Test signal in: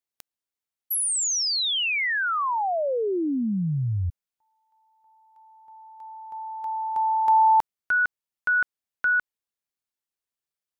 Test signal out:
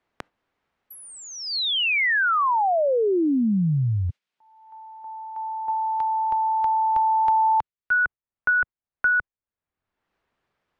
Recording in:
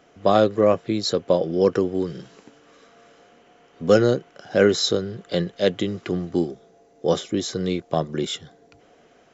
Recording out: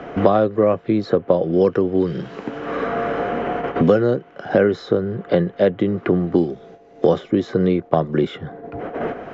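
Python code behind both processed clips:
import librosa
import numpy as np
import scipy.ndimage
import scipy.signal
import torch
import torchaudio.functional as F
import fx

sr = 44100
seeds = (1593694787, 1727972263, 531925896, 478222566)

y = fx.gate_hold(x, sr, open_db=-45.0, close_db=-52.0, hold_ms=20.0, range_db=-11, attack_ms=19.0, release_ms=45.0)
y = scipy.signal.sosfilt(scipy.signal.butter(2, 1800.0, 'lowpass', fs=sr, output='sos'), y)
y = fx.band_squash(y, sr, depth_pct=100)
y = F.gain(torch.from_numpy(y), 4.0).numpy()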